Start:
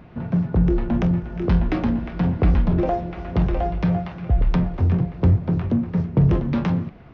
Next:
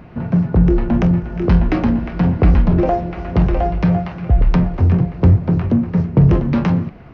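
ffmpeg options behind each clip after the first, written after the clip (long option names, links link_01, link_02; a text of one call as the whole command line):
ffmpeg -i in.wav -af "equalizer=frequency=3500:width_type=o:width=0.22:gain=-5.5,volume=5.5dB" out.wav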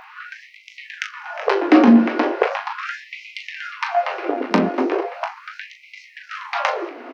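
ffmpeg -i in.wav -filter_complex "[0:a]acontrast=88,asplit=2[link_01][link_02];[link_02]aecho=0:1:20|38:0.335|0.355[link_03];[link_01][link_03]amix=inputs=2:normalize=0,afftfilt=real='re*gte(b*sr/1024,210*pow(2000/210,0.5+0.5*sin(2*PI*0.38*pts/sr)))':imag='im*gte(b*sr/1024,210*pow(2000/210,0.5+0.5*sin(2*PI*0.38*pts/sr)))':win_size=1024:overlap=0.75,volume=1dB" out.wav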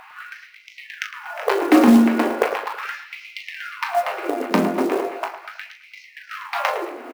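ffmpeg -i in.wav -filter_complex "[0:a]acrusher=bits=5:mode=log:mix=0:aa=0.000001,asplit=2[link_01][link_02];[link_02]adelay=108,lowpass=frequency=2300:poles=1,volume=-9.5dB,asplit=2[link_03][link_04];[link_04]adelay=108,lowpass=frequency=2300:poles=1,volume=0.4,asplit=2[link_05][link_06];[link_06]adelay=108,lowpass=frequency=2300:poles=1,volume=0.4,asplit=2[link_07][link_08];[link_08]adelay=108,lowpass=frequency=2300:poles=1,volume=0.4[link_09];[link_01][link_03][link_05][link_07][link_09]amix=inputs=5:normalize=0,volume=-1.5dB" out.wav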